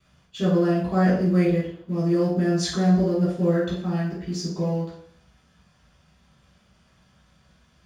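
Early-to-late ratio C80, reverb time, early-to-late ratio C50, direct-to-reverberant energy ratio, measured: 7.0 dB, 0.60 s, 2.5 dB, −11.0 dB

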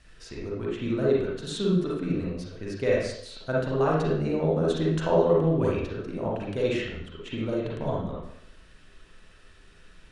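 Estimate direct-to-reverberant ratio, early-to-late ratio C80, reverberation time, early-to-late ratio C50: −5.5 dB, 4.5 dB, 0.70 s, −1.0 dB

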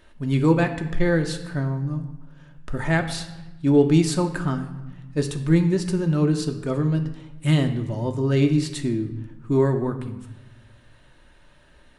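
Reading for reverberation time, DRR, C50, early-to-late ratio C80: 1.1 s, 4.5 dB, 10.5 dB, 12.5 dB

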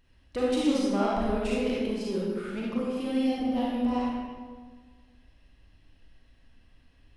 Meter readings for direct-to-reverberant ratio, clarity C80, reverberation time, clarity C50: −6.0 dB, 0.5 dB, 1.6 s, −3.0 dB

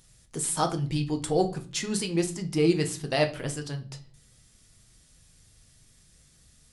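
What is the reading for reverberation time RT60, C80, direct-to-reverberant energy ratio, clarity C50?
0.40 s, 20.0 dB, 4.5 dB, 14.5 dB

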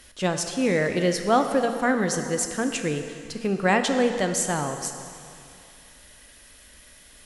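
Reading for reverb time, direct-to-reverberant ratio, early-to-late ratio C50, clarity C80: 2.6 s, 6.0 dB, 7.0 dB, 8.0 dB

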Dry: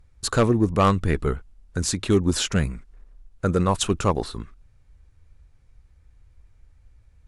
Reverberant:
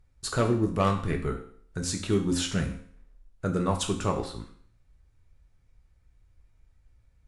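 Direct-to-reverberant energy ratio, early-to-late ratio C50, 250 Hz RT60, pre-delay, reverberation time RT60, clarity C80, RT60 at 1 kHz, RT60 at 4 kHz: 2.5 dB, 9.5 dB, 0.55 s, 4 ms, 0.55 s, 13.0 dB, 0.55 s, 0.55 s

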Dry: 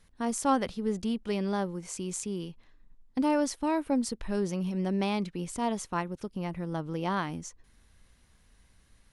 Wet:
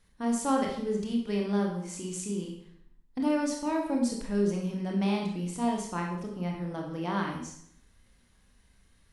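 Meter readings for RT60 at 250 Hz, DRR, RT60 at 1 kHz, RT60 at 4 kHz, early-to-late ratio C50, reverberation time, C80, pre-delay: 0.75 s, 0.0 dB, 0.65 s, 0.60 s, 4.5 dB, 0.65 s, 7.5 dB, 22 ms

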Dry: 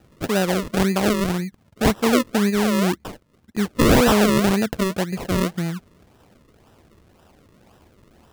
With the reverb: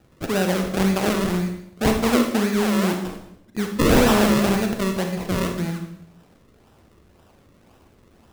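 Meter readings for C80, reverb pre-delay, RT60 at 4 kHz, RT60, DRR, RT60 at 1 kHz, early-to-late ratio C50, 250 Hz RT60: 9.0 dB, 31 ms, 0.70 s, 0.80 s, 3.5 dB, 0.75 s, 6.0 dB, 0.90 s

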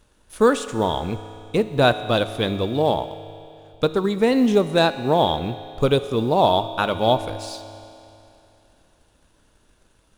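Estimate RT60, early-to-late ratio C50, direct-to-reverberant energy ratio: 2.8 s, 11.5 dB, 10.5 dB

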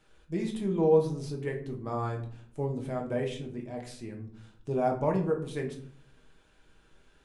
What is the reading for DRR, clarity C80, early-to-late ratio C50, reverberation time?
0.5 dB, 13.5 dB, 9.5 dB, 0.55 s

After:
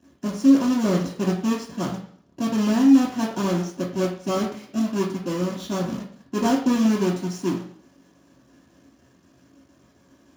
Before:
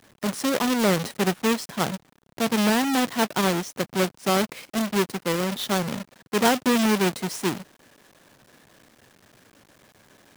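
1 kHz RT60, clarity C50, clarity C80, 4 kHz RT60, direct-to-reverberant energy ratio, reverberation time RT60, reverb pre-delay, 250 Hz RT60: 0.55 s, 6.5 dB, 10.0 dB, 0.60 s, −6.5 dB, 0.55 s, 3 ms, 0.60 s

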